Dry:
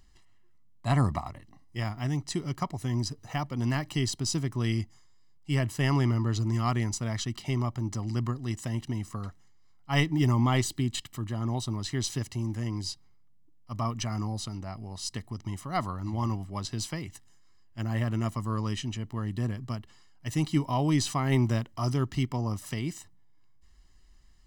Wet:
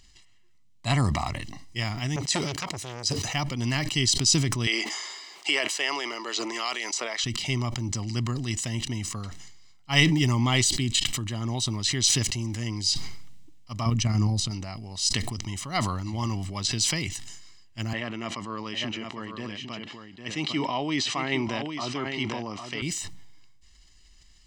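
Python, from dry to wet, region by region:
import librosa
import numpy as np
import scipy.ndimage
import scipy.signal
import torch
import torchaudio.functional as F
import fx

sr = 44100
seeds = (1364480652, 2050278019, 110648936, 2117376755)

y = fx.chain(x, sr, fx.highpass(hz=46.0, slope=24),
    fx.low_shelf(hz=230.0, db=-7.0),
    fx.transformer_sat(knee_hz=2000.0), at=(2.16, 3.28))
y = fx.chain(y, sr, fx.highpass(hz=420.0, slope=24),
    fx.high_shelf(hz=7000.0, db=-9.0),
    fx.band_squash(depth_pct=100), at=(4.67, 7.24))
y = fx.chain(y, sr, fx.low_shelf(hz=320.0, db=11.5),
    fx.level_steps(step_db=11), at=(13.86, 14.51))
y = fx.chain(y, sr, fx.bandpass_edges(low_hz=280.0, high_hz=3100.0),
    fx.echo_single(ms=803, db=-8.0), at=(17.93, 22.82))
y = fx.band_shelf(y, sr, hz=4200.0, db=10.5, octaves=2.3)
y = fx.sustainer(y, sr, db_per_s=35.0)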